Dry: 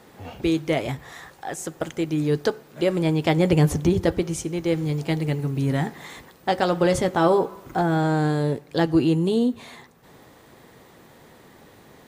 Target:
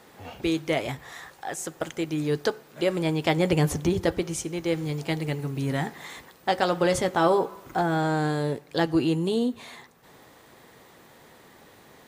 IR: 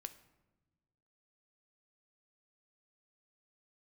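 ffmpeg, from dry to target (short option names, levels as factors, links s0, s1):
-af "lowshelf=f=450:g=-6"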